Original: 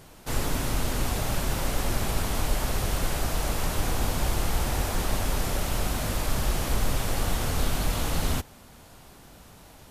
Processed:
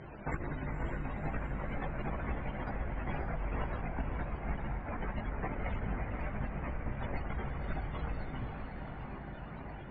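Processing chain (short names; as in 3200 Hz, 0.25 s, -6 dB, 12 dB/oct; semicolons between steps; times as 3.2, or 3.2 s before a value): formant sharpening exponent 1.5; HPF 74 Hz 6 dB/oct; bell 2000 Hz +8.5 dB 1 oct; notches 60/120/180/240/300/360/420/480 Hz; negative-ratio compressor -36 dBFS, ratio -0.5; chorus voices 6, 0.4 Hz, delay 17 ms, depth 3.4 ms; loudest bins only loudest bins 64; air absorption 89 m; diffused feedback echo 0.521 s, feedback 54%, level -6 dB; gain +3 dB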